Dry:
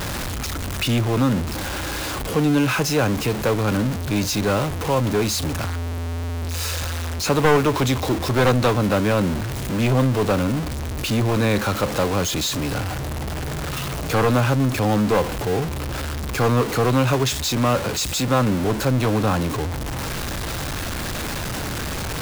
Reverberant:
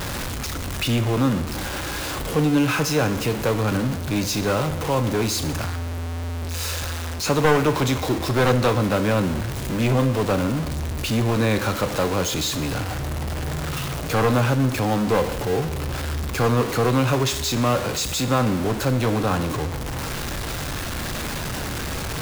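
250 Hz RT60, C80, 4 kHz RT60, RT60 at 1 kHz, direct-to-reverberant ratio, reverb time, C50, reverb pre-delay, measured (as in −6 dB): 1.0 s, 14.0 dB, 1.0 s, 1.0 s, 9.0 dB, 1.0 s, 12.0 dB, 8 ms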